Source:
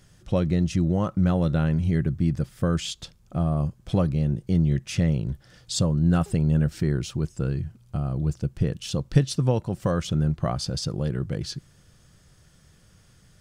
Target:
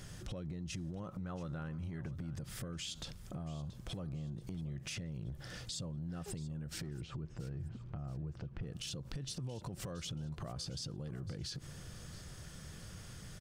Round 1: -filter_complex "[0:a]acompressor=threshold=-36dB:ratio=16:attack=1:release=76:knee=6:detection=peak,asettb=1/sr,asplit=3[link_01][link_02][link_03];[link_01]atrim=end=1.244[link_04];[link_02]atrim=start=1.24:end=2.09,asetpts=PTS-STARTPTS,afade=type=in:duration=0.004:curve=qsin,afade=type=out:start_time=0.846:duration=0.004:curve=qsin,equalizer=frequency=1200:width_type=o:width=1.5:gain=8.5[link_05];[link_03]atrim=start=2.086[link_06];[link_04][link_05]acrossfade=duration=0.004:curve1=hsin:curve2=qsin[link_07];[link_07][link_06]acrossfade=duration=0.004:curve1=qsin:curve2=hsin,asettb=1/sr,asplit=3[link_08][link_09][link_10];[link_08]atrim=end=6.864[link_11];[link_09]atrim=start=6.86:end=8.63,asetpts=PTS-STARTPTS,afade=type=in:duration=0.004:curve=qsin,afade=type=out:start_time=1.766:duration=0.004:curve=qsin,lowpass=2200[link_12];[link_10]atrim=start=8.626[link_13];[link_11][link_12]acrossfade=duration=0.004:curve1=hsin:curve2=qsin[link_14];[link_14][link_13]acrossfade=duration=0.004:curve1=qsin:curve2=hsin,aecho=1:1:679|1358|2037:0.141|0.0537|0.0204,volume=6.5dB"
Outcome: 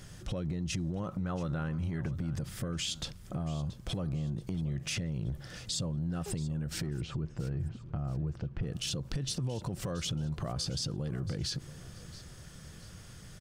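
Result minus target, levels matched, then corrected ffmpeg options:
downward compressor: peak gain reduction −8 dB
-filter_complex "[0:a]acompressor=threshold=-44.5dB:ratio=16:attack=1:release=76:knee=6:detection=peak,asettb=1/sr,asplit=3[link_01][link_02][link_03];[link_01]atrim=end=1.244[link_04];[link_02]atrim=start=1.24:end=2.09,asetpts=PTS-STARTPTS,afade=type=in:duration=0.004:curve=qsin,afade=type=out:start_time=0.846:duration=0.004:curve=qsin,equalizer=frequency=1200:width_type=o:width=1.5:gain=8.5[link_05];[link_03]atrim=start=2.086[link_06];[link_04][link_05]acrossfade=duration=0.004:curve1=hsin:curve2=qsin[link_07];[link_07][link_06]acrossfade=duration=0.004:curve1=qsin:curve2=hsin,asettb=1/sr,asplit=3[link_08][link_09][link_10];[link_08]atrim=end=6.864[link_11];[link_09]atrim=start=6.86:end=8.63,asetpts=PTS-STARTPTS,afade=type=in:duration=0.004:curve=qsin,afade=type=out:start_time=1.766:duration=0.004:curve=qsin,lowpass=2200[link_12];[link_10]atrim=start=8.626[link_13];[link_11][link_12]acrossfade=duration=0.004:curve1=hsin:curve2=qsin[link_14];[link_14][link_13]acrossfade=duration=0.004:curve1=qsin:curve2=hsin,aecho=1:1:679|1358|2037:0.141|0.0537|0.0204,volume=6.5dB"

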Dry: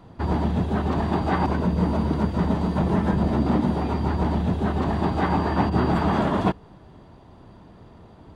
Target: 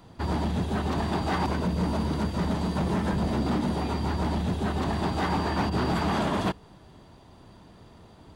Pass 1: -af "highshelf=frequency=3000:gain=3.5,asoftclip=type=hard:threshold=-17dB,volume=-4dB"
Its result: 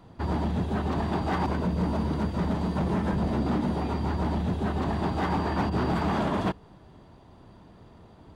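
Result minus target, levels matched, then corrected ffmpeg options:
8,000 Hz band −7.0 dB
-af "highshelf=frequency=3000:gain=12.5,asoftclip=type=hard:threshold=-17dB,volume=-4dB"

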